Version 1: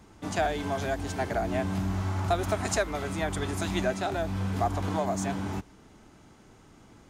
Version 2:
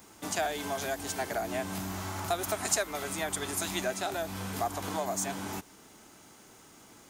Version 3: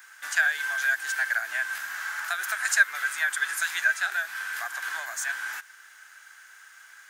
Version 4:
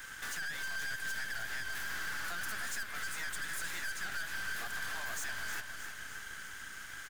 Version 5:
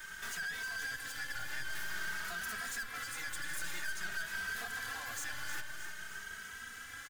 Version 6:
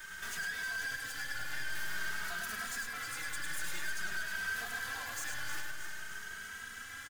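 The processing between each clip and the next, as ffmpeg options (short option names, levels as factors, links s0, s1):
-filter_complex "[0:a]aemphasis=mode=production:type=bsi,asplit=2[s0][s1];[s1]acompressor=threshold=0.0141:ratio=6,volume=1.19[s2];[s0][s2]amix=inputs=2:normalize=0,volume=0.531"
-af "highpass=f=1600:t=q:w=9.7"
-af "acompressor=threshold=0.0126:ratio=2.5,aeval=exprs='(tanh(178*val(0)+0.7)-tanh(0.7))/178':c=same,aecho=1:1:310|620|930|1240|1550|1860|2170:0.355|0.202|0.115|0.0657|0.0375|0.0213|0.0122,volume=2.24"
-filter_complex "[0:a]asplit=2[s0][s1];[s1]adelay=2.8,afreqshift=0.5[s2];[s0][s2]amix=inputs=2:normalize=1,volume=1.26"
-af "aecho=1:1:103:0.562"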